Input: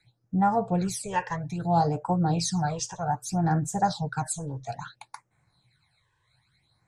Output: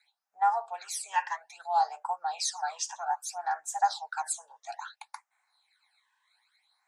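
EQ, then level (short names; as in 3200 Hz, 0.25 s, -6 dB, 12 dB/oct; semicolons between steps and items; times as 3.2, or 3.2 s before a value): elliptic high-pass 780 Hz, stop band 70 dB; 0.0 dB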